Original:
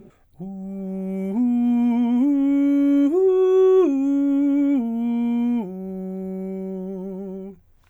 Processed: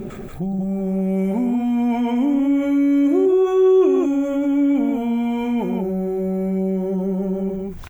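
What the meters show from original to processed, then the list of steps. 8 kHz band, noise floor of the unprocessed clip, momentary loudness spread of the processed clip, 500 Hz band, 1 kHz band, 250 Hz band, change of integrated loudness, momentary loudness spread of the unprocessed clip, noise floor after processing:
can't be measured, −55 dBFS, 8 LU, +2.5 dB, +5.5 dB, +1.0 dB, +1.0 dB, 16 LU, −32 dBFS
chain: on a send: loudspeakers that aren't time-aligned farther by 41 metres −11 dB, 63 metres −5 dB
on the sum: dynamic equaliser 230 Hz, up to −7 dB, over −30 dBFS, Q 2.2
envelope flattener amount 50%
level −2 dB

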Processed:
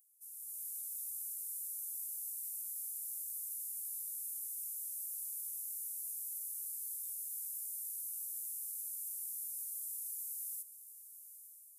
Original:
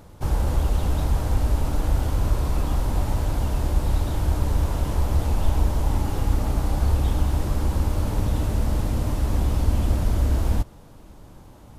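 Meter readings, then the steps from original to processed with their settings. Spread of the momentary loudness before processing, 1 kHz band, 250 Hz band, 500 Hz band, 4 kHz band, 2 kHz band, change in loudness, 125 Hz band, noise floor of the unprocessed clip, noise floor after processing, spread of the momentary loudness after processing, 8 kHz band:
2 LU, below −40 dB, below −40 dB, below −40 dB, −25.0 dB, below −40 dB, −15.0 dB, below −40 dB, −46 dBFS, −55 dBFS, 4 LU, +1.5 dB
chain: inverse Chebyshev high-pass filter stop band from 1,900 Hz, stop band 80 dB
automatic gain control gain up to 9 dB
on a send: feedback delay with all-pass diffusion 896 ms, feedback 53%, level −13.5 dB
on the sum: level −1.5 dB

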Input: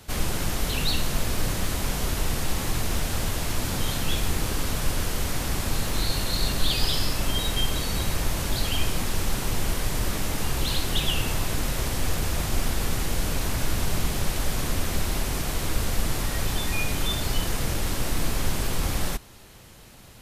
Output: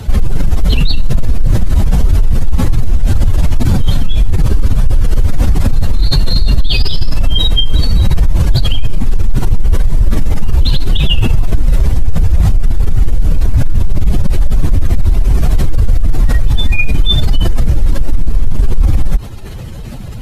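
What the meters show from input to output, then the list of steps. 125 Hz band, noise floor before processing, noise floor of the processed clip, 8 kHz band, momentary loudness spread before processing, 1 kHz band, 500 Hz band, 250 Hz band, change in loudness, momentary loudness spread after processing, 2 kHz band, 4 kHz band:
+16.0 dB, −47 dBFS, −23 dBFS, −4.5 dB, 3 LU, +2.5 dB, +5.5 dB, +10.5 dB, +12.5 dB, 4 LU, +4.5 dB, +8.0 dB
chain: expanding power law on the bin magnitudes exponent 1.9
boost into a limiter +25 dB
level −1 dB

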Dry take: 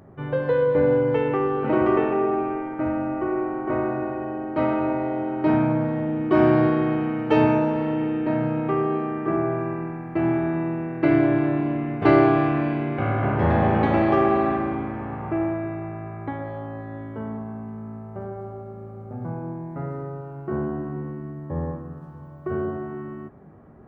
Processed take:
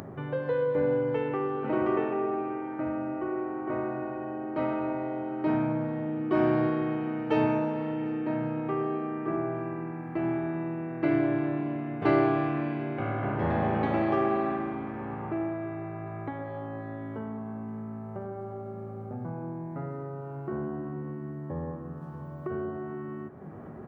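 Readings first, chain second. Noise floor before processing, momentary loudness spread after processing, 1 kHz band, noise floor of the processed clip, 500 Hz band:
−39 dBFS, 12 LU, −7.0 dB, −40 dBFS, −7.0 dB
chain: high-pass filter 97 Hz
upward compression, threshold −23 dBFS
on a send: repeating echo 747 ms, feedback 54%, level −23 dB
on the sum: level −7 dB

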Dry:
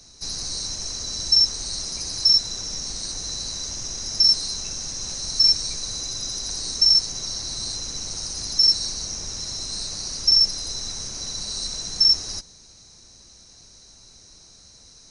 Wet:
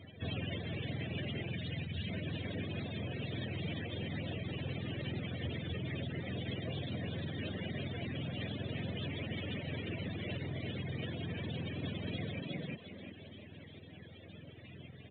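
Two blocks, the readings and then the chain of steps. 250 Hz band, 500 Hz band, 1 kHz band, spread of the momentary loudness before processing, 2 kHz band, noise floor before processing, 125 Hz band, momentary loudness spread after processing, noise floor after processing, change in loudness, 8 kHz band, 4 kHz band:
+5.5 dB, +2.5 dB, −6.5 dB, 12 LU, +2.0 dB, −50 dBFS, +5.0 dB, 13 LU, −53 dBFS, −19.0 dB, below −40 dB, −26.0 dB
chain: frequency axis turned over on the octave scale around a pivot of 440 Hz
hard clipping −37 dBFS, distortion −22 dB
gain on a spectral selection 0:01.50–0:02.09, 210–1,400 Hz −12 dB
high-shelf EQ 2,400 Hz −2 dB
echo with shifted repeats 353 ms, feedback 38%, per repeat +41 Hz, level −4 dB
brickwall limiter −37.5 dBFS, peak gain reduction 6.5 dB
reverb reduction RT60 0.55 s
flat-topped bell 1,100 Hz −12.5 dB 1.1 octaves
level +9.5 dB
mu-law 64 kbit/s 8,000 Hz

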